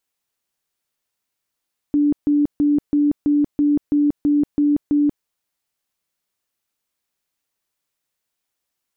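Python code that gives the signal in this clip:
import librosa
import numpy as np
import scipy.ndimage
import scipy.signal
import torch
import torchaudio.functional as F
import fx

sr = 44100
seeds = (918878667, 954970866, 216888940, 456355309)

y = fx.tone_burst(sr, hz=292.0, cycles=54, every_s=0.33, bursts=10, level_db=-13.0)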